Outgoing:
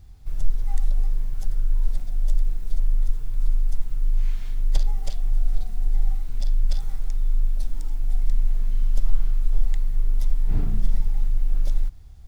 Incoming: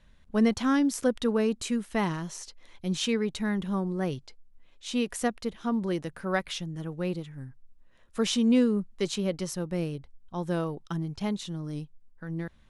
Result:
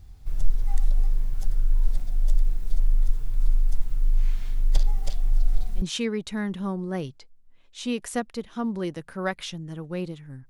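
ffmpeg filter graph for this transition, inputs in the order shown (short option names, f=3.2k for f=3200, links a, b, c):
-filter_complex "[1:a]asplit=2[a][b];[0:a]apad=whole_dur=10.49,atrim=end=10.49,atrim=end=5.822[c];[b]atrim=start=2.898:end=7.57[d];[a]atrim=start=2.44:end=2.9,asetpts=PTS-STARTPTS,volume=-11.5dB,afade=t=in:d=0.004:c=hsin,afade=t=out:st=0.456:d=0.004:c=hsin,adelay=5360[e];[c][d]acrossfade=d=0.004:c1=hsin:c2=hsin[f];[f][e]amix=inputs=2:normalize=0"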